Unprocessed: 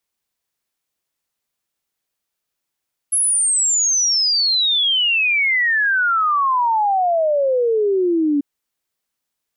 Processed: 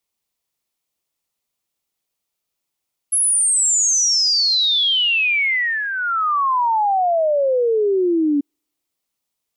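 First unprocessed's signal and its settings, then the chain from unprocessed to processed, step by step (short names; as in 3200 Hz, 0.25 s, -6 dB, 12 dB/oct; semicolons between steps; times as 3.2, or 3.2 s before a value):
log sweep 11000 Hz -> 280 Hz 5.29 s -14 dBFS
bell 1600 Hz -7 dB 0.4 oct; thin delay 87 ms, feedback 62%, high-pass 5300 Hz, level -11 dB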